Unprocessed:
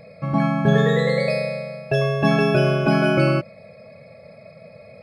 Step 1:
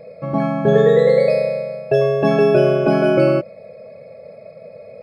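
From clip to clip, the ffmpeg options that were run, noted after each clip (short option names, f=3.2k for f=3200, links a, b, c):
-af "equalizer=f=470:t=o:w=1.3:g=13.5,volume=-4dB"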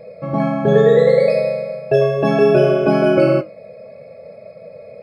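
-af "flanger=delay=9.7:depth=6.3:regen=-58:speed=0.67:shape=sinusoidal,volume=5dB"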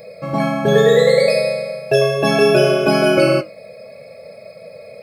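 -af "crystalizer=i=7:c=0,volume=-1.5dB"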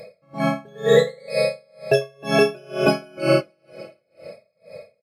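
-af "aecho=1:1:305|610|915:0.0841|0.0404|0.0194,aresample=32000,aresample=44100,aeval=exprs='val(0)*pow(10,-33*(0.5-0.5*cos(2*PI*2.1*n/s))/20)':c=same"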